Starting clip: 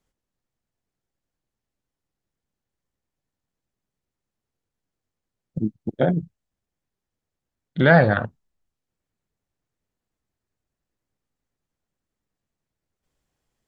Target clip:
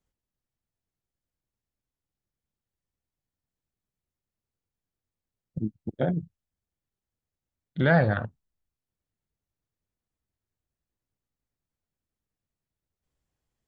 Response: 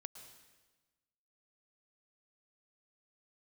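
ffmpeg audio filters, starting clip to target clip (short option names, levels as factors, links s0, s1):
-af "equalizer=f=69:t=o:w=2:g=6.5,volume=0.422"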